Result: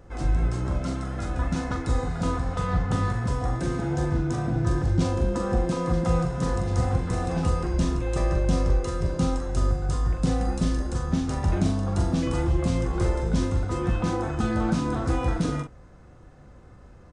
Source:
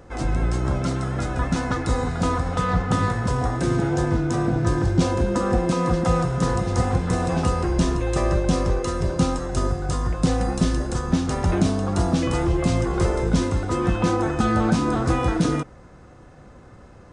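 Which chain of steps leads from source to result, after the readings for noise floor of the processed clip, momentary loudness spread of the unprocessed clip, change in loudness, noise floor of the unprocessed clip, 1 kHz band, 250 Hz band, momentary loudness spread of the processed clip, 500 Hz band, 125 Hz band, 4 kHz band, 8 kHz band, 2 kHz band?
-48 dBFS, 4 LU, -3.5 dB, -46 dBFS, -6.0 dB, -4.5 dB, 4 LU, -5.0 dB, -2.5 dB, -6.0 dB, -6.0 dB, -6.0 dB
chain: bass shelf 100 Hz +8 dB; doubling 42 ms -6.5 dB; trim -7 dB

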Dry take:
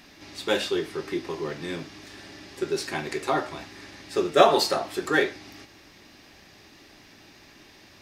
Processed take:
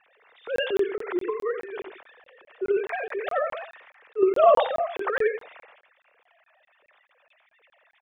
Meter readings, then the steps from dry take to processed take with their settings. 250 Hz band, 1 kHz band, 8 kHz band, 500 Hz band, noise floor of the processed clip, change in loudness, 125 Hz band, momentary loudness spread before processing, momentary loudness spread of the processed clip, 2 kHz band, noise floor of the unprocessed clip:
-3.0 dB, -0.5 dB, under -20 dB, +2.0 dB, -70 dBFS, +0.5 dB, under -15 dB, 24 LU, 19 LU, -2.5 dB, -53 dBFS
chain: formants replaced by sine waves; distance through air 390 m; transient shaper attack -10 dB, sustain +11 dB; on a send: delay 89 ms -10.5 dB; on the sum: crackling interface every 0.21 s, samples 1024, zero, from 0.56 s; trim +2.5 dB

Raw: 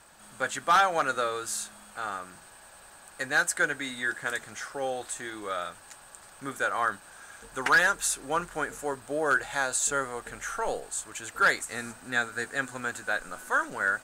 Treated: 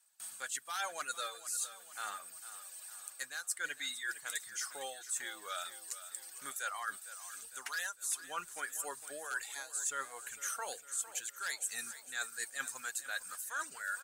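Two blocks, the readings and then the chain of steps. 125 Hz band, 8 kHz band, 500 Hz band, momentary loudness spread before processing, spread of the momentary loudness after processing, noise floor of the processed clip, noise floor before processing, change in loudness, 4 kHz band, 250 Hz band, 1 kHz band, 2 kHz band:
under -25 dB, -3.5 dB, -18.0 dB, 16 LU, 8 LU, -56 dBFS, -52 dBFS, -11.0 dB, -6.0 dB, -22.5 dB, -14.5 dB, -13.0 dB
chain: high-pass 42 Hz; pre-emphasis filter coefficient 0.9; gate with hold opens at -47 dBFS; reverb removal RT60 1.8 s; bass shelf 380 Hz -11 dB; reverse; compression 12:1, threshold -44 dBFS, peak gain reduction 20.5 dB; reverse; wavefolder -31.5 dBFS; on a send: feedback delay 455 ms, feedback 52%, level -14 dB; on the sum: trim +9 dB

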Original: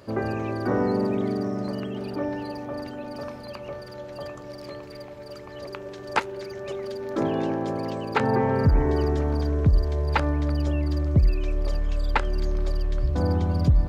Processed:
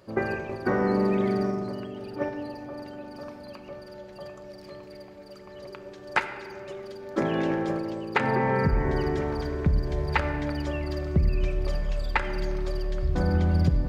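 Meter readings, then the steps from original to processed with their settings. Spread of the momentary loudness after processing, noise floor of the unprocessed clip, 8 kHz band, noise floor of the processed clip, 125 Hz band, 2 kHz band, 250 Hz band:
19 LU, -40 dBFS, no reading, -45 dBFS, -3.5 dB, +2.5 dB, -1.5 dB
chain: gate -26 dBFS, range -12 dB; dynamic bell 2 kHz, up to +7 dB, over -48 dBFS, Q 1.4; compression 3:1, threshold -30 dBFS, peak gain reduction 12 dB; simulated room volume 3400 m³, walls mixed, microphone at 0.98 m; trim +5.5 dB

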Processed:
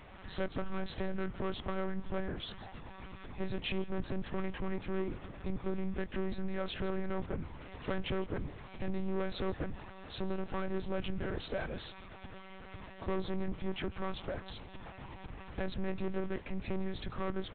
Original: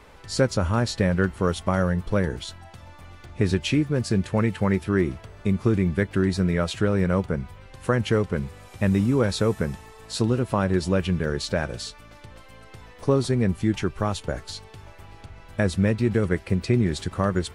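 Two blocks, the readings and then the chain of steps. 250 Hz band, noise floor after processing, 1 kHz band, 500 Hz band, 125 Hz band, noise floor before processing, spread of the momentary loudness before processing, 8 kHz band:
-15.0 dB, -50 dBFS, -11.5 dB, -13.0 dB, -18.0 dB, -47 dBFS, 10 LU, under -40 dB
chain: in parallel at -1.5 dB: compression, threshold -30 dBFS, peak gain reduction 14.5 dB; on the sum: saturation -21.5 dBFS, distortion -7 dB; delay 158 ms -19 dB; monotone LPC vocoder at 8 kHz 190 Hz; trim -8.5 dB

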